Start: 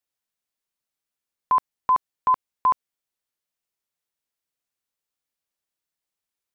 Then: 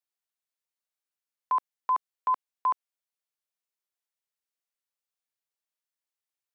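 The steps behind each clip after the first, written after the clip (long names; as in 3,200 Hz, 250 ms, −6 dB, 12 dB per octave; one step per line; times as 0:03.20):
high-pass filter 470 Hz
level −6 dB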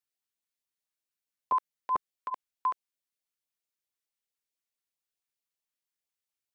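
auto-filter notch saw up 4.6 Hz 470–1,700 Hz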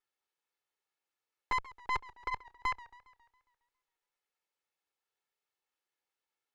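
lower of the sound and its delayed copy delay 2.3 ms
mid-hump overdrive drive 18 dB, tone 1,200 Hz, clips at −20.5 dBFS
feedback echo with a swinging delay time 137 ms, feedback 54%, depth 136 cents, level −19.5 dB
level −1 dB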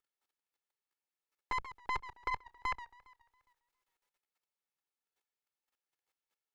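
output level in coarse steps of 13 dB
level +5.5 dB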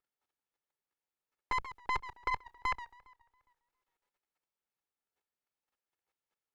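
one half of a high-frequency compander decoder only
level +2.5 dB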